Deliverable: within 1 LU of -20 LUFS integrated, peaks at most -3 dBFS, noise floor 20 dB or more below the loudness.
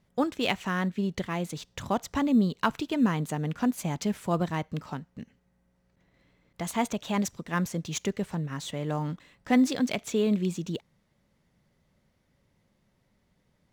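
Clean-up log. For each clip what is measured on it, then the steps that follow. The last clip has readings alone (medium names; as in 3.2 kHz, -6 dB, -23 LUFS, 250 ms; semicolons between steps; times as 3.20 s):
loudness -29.0 LUFS; peak level -9.5 dBFS; loudness target -20.0 LUFS
-> trim +9 dB; peak limiter -3 dBFS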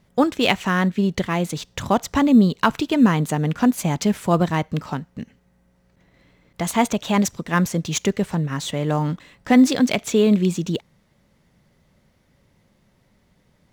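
loudness -20.5 LUFS; peak level -3.0 dBFS; noise floor -62 dBFS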